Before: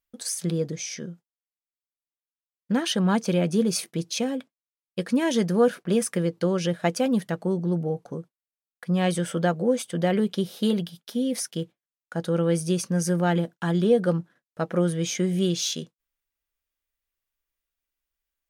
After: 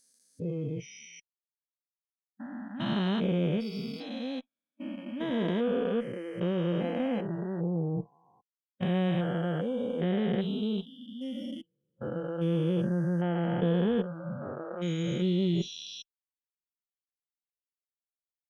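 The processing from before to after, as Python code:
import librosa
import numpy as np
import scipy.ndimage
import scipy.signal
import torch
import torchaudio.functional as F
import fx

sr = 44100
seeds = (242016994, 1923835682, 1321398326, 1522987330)

y = fx.spec_steps(x, sr, hold_ms=400)
y = fx.noise_reduce_blind(y, sr, reduce_db=26)
y = fx.cheby_harmonics(y, sr, harmonics=(3, 4), levels_db=(-26, -34), full_scale_db=-15.0)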